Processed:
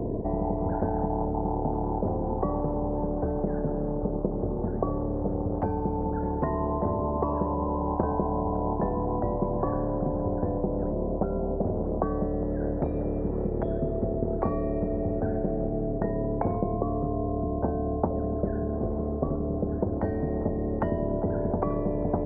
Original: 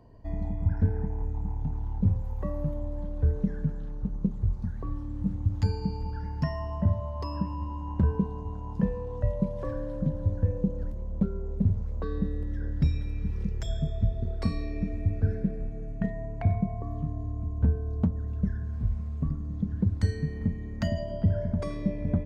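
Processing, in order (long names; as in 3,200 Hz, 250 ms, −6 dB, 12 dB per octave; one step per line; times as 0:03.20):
transistor ladder low-pass 750 Hz, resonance 65%
low shelf with overshoot 470 Hz +10 dB, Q 3
every bin compressed towards the loudest bin 10 to 1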